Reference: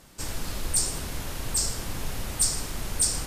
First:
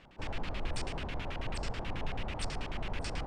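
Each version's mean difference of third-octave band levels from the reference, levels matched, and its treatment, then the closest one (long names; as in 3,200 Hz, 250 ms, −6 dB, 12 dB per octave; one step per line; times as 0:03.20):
10.0 dB: auto-filter low-pass square 9.2 Hz 810–2,700 Hz
level −4.5 dB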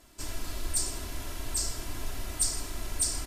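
2.0 dB: comb filter 3 ms, depth 64%
level −6 dB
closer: second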